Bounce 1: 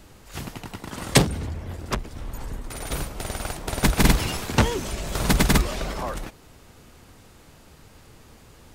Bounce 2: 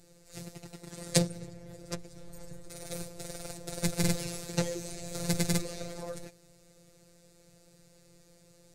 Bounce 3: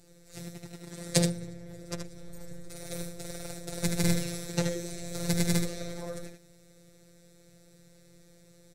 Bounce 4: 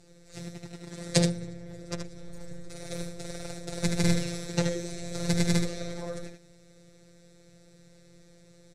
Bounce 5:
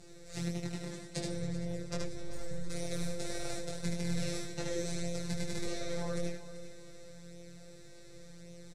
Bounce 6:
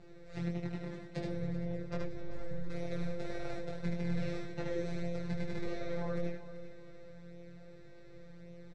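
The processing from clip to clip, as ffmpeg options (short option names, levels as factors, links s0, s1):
-af "equalizer=f=3100:t=o:w=0.37:g=-9.5,afftfilt=real='hypot(re,im)*cos(PI*b)':imag='0':win_size=1024:overlap=0.75,equalizer=f=125:t=o:w=1:g=10,equalizer=f=250:t=o:w=1:g=-5,equalizer=f=500:t=o:w=1:g=11,equalizer=f=1000:t=o:w=1:g=-10,equalizer=f=4000:t=o:w=1:g=5,equalizer=f=8000:t=o:w=1:g=8,volume=0.335"
-af "aecho=1:1:58|76:0.133|0.501"
-af "lowpass=7500,volume=1.26"
-af "areverse,acompressor=threshold=0.02:ratio=20,areverse,flanger=delay=20:depth=2.9:speed=0.88,aecho=1:1:387|774|1161:0.2|0.0678|0.0231,volume=2.11"
-af "lowpass=2400"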